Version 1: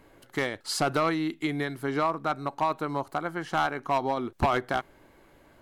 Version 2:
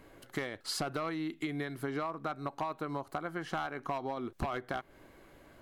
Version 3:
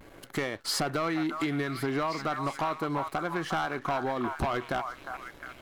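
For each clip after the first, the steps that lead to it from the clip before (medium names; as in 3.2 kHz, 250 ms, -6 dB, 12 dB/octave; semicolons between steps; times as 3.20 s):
band-stop 890 Hz, Q 12; dynamic bell 7.7 kHz, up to -4 dB, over -50 dBFS, Q 0.87; compression, threshold -33 dBFS, peak gain reduction 12 dB
vibrato 0.39 Hz 32 cents; repeats whose band climbs or falls 356 ms, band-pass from 1.1 kHz, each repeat 0.7 oct, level -5 dB; waveshaping leveller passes 2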